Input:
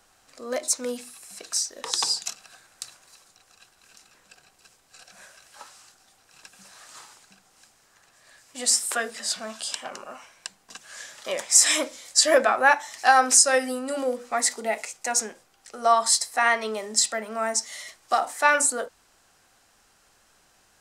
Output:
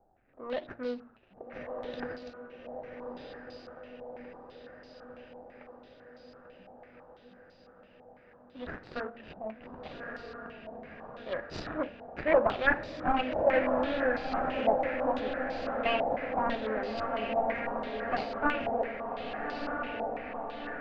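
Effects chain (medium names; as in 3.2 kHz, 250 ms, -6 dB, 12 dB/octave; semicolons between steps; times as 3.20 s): median filter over 41 samples; distance through air 200 m; de-hum 116.7 Hz, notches 8; on a send: echo that smears into a reverb 1277 ms, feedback 66%, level -3.5 dB; on the sum: step-sequenced low-pass 6 Hz 810–4600 Hz; trim -2.5 dB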